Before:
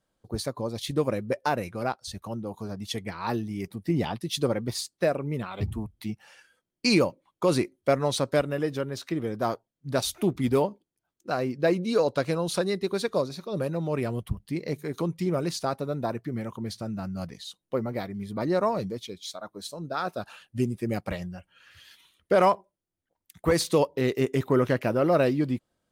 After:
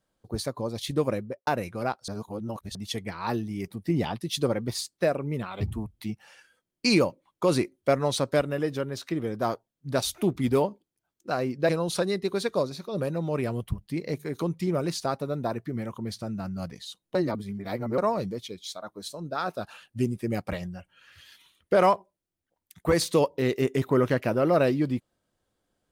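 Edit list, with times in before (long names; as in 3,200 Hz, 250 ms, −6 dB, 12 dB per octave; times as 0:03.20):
0:01.13–0:01.47: fade out and dull
0:02.08–0:02.75: reverse
0:11.69–0:12.28: remove
0:17.74–0:18.57: reverse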